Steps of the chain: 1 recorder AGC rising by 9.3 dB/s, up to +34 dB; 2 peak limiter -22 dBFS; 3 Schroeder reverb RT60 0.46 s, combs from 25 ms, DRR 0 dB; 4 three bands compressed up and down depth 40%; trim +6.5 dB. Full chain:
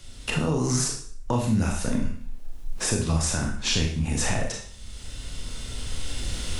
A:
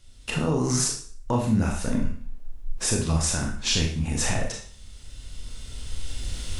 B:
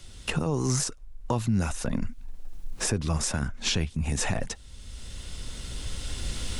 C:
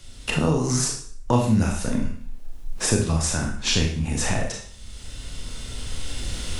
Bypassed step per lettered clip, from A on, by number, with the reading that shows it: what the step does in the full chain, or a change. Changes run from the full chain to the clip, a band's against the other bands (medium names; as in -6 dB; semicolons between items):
4, momentary loudness spread change +3 LU; 3, loudness change -3.0 LU; 2, crest factor change +3.0 dB